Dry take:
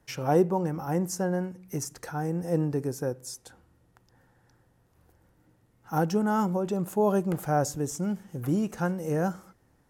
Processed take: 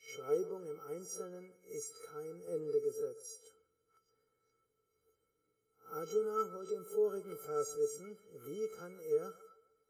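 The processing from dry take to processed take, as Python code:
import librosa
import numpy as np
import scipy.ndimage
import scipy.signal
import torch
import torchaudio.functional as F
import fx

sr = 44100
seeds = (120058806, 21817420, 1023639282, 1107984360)

y = fx.spec_swells(x, sr, rise_s=0.31)
y = fx.comb_fb(y, sr, f0_hz=440.0, decay_s=0.17, harmonics='odd', damping=0.0, mix_pct=100)
y = fx.echo_wet_bandpass(y, sr, ms=146, feedback_pct=37, hz=990.0, wet_db=-15.5)
y = fx.band_squash(y, sr, depth_pct=40, at=(2.47, 3.01))
y = y * 10.0 ** (4.0 / 20.0)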